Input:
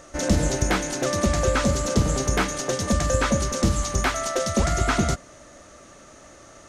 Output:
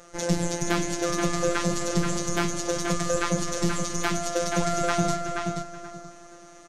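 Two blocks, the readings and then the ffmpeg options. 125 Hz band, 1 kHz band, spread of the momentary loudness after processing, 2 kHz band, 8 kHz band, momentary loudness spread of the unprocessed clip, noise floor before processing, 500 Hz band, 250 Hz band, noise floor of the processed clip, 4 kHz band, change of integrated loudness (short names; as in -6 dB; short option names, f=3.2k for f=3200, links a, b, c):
-5.5 dB, -1.5 dB, 7 LU, -3.0 dB, -2.5 dB, 3 LU, -48 dBFS, -2.0 dB, -2.0 dB, -48 dBFS, -2.5 dB, -3.5 dB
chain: -filter_complex "[0:a]asplit=2[a][b];[b]aecho=0:1:373|746|1119:0.158|0.0475|0.0143[c];[a][c]amix=inputs=2:normalize=0,afftfilt=real='hypot(re,im)*cos(PI*b)':imag='0':win_size=1024:overlap=0.75,asplit=2[d][e];[e]adelay=479,lowpass=f=4.7k:p=1,volume=-4.5dB,asplit=2[f][g];[g]adelay=479,lowpass=f=4.7k:p=1,volume=0.21,asplit=2[h][i];[i]adelay=479,lowpass=f=4.7k:p=1,volume=0.21[j];[f][h][j]amix=inputs=3:normalize=0[k];[d][k]amix=inputs=2:normalize=0"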